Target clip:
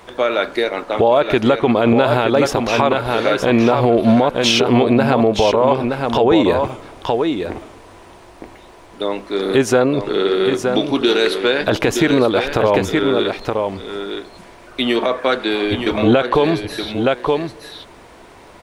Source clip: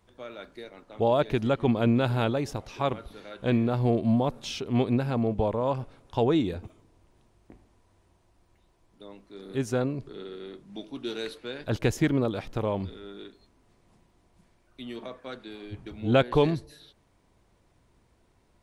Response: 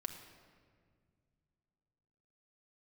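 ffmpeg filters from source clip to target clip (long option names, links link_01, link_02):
-filter_complex "[0:a]bass=frequency=250:gain=-14,treble=frequency=4000:gain=-6,acompressor=threshold=-41dB:ratio=2.5,asplit=2[link_01][link_02];[link_02]aecho=0:1:920:0.447[link_03];[link_01][link_03]amix=inputs=2:normalize=0,alimiter=level_in=30.5dB:limit=-1dB:release=50:level=0:latency=1,volume=-3dB"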